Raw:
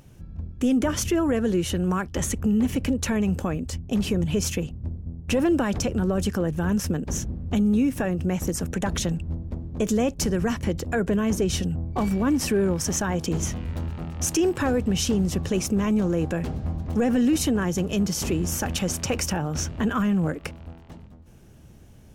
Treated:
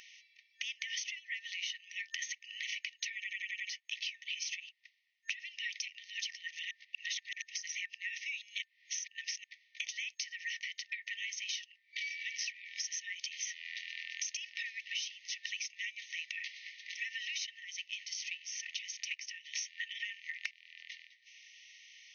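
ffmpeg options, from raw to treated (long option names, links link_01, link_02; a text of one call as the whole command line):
ffmpeg -i in.wav -filter_complex "[0:a]asplit=3[link_01][link_02][link_03];[link_01]afade=type=out:start_time=17.45:duration=0.02[link_04];[link_02]agate=range=-13dB:threshold=-23dB:ratio=16:release=100:detection=peak,afade=type=in:start_time=17.45:duration=0.02,afade=type=out:start_time=19.44:duration=0.02[link_05];[link_03]afade=type=in:start_time=19.44:duration=0.02[link_06];[link_04][link_05][link_06]amix=inputs=3:normalize=0,asplit=9[link_07][link_08][link_09][link_10][link_11][link_12][link_13][link_14][link_15];[link_07]atrim=end=3.242[link_16];[link_08]atrim=start=3.148:end=3.242[link_17];[link_09]atrim=start=3.148:end=3.242[link_18];[link_10]atrim=start=3.148:end=3.242[link_19];[link_11]atrim=start=3.148:end=3.242[link_20];[link_12]atrim=start=3.148:end=3.242[link_21];[link_13]atrim=start=3.688:end=6.712[link_22];[link_14]atrim=start=6.708:end=9.442,asetpts=PTS-STARTPTS,areverse[link_23];[link_15]atrim=start=9.438[link_24];[link_16][link_17]acrossfade=duration=0.004:curve1=hsin:curve2=hsin[link_25];[link_25][link_18]acrossfade=duration=0.004:curve1=hsin:curve2=hsin[link_26];[link_26][link_19]acrossfade=duration=0.004:curve1=hsin:curve2=hsin[link_27];[link_27][link_20]acrossfade=duration=0.004:curve1=hsin:curve2=hsin[link_28];[link_28][link_21]acrossfade=duration=0.004:curve1=hsin:curve2=hsin[link_29];[link_29][link_22]acrossfade=duration=0.004:curve1=hsin:curve2=hsin[link_30];[link_30][link_23]acrossfade=duration=0.004:curve1=hsin:curve2=hsin[link_31];[link_31][link_24]acrossfade=duration=0.004:curve1=hsin:curve2=hsin,aemphasis=mode=reproduction:type=75kf,afftfilt=real='re*between(b*sr/4096,1800,6500)':imag='im*between(b*sr/4096,1800,6500)':win_size=4096:overlap=0.75,acompressor=threshold=-54dB:ratio=10,volume=17dB" out.wav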